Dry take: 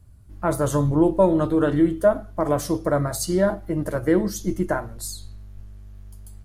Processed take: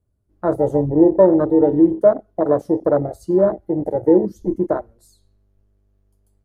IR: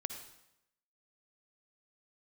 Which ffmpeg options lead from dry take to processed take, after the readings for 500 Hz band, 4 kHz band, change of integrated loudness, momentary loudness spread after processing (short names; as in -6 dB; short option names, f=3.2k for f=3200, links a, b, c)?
+6.0 dB, under -20 dB, +5.0 dB, 10 LU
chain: -af "equalizer=f=440:t=o:w=1.7:g=13.5,afwtdn=0.2,volume=-5dB"